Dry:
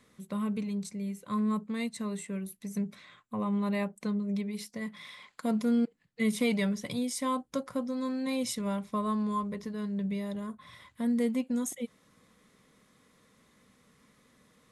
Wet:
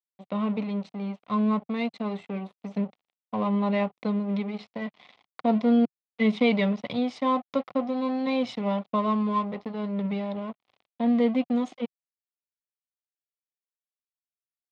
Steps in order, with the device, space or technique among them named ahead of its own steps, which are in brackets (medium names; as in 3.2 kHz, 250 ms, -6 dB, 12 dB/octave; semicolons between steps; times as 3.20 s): blown loudspeaker (crossover distortion -44.5 dBFS; cabinet simulation 140–3700 Hz, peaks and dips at 150 Hz -8 dB, 350 Hz -4 dB, 740 Hz +6 dB, 1.6 kHz -10 dB); trim +8 dB